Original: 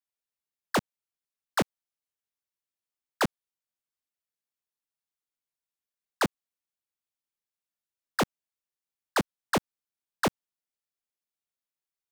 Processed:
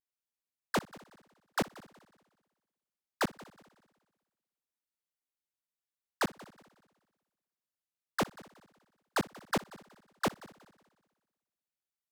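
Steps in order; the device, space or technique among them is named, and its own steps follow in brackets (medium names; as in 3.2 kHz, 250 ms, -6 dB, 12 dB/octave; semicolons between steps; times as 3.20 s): multi-head tape echo (multi-head delay 61 ms, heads first and third, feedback 51%, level -21 dB; wow and flutter); trim -5 dB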